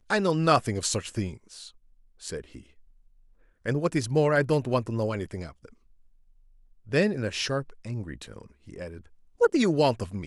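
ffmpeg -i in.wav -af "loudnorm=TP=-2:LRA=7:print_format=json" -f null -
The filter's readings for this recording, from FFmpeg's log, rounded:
"input_i" : "-26.7",
"input_tp" : "-7.0",
"input_lra" : "3.9",
"input_thresh" : "-38.8",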